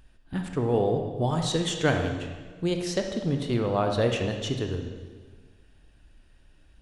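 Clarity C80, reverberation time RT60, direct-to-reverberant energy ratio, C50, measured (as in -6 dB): 7.5 dB, 1.5 s, 4.0 dB, 5.5 dB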